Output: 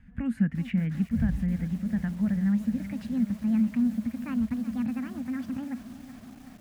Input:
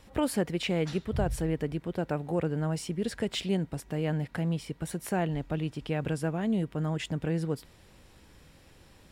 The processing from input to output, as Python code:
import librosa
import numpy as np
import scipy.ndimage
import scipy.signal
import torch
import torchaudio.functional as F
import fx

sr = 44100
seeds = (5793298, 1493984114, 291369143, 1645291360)

y = fx.speed_glide(x, sr, from_pct=88, to_pct=188)
y = fx.curve_eq(y, sr, hz=(140.0, 230.0, 370.0, 600.0, 1100.0, 1700.0, 4100.0), db=(0, 7, -26, -20, -18, -2, -25))
y = fx.echo_crushed(y, sr, ms=372, feedback_pct=80, bits=8, wet_db=-13.0)
y = F.gain(torch.from_numpy(y), 2.5).numpy()